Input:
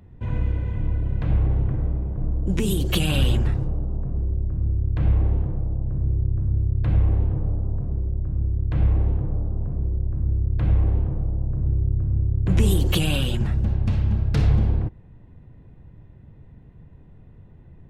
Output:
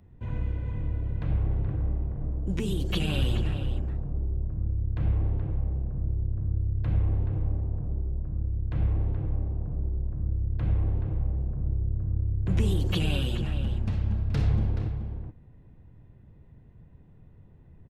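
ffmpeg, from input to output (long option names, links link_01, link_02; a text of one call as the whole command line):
ffmpeg -i in.wav -filter_complex "[0:a]acrossover=split=6000[link_01][link_02];[link_02]acompressor=threshold=-44dB:ratio=4:attack=1:release=60[link_03];[link_01][link_03]amix=inputs=2:normalize=0,asplit=2[link_04][link_05];[link_05]adelay=425.7,volume=-8dB,highshelf=frequency=4000:gain=-9.58[link_06];[link_04][link_06]amix=inputs=2:normalize=0,volume=-6.5dB" out.wav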